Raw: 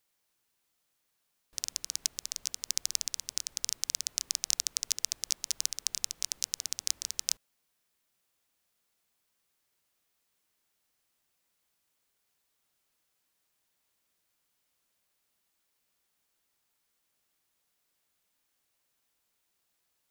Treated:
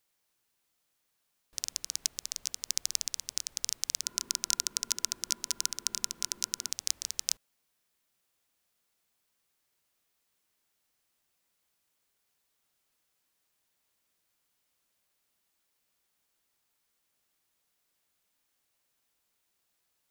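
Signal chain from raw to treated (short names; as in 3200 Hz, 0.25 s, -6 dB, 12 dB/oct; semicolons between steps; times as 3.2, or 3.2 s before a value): 4.03–6.71 small resonant body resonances 230/350/1000/1400 Hz, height 14 dB, ringing for 45 ms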